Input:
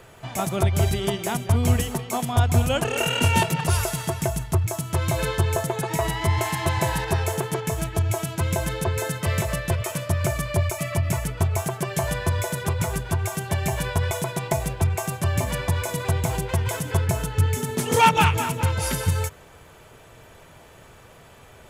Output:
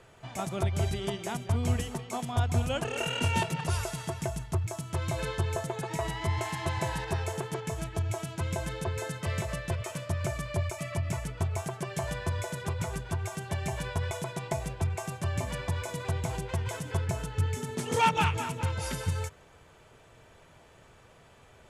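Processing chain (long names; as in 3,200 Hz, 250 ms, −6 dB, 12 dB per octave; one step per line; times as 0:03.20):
low-pass filter 9,100 Hz 12 dB per octave
level −8 dB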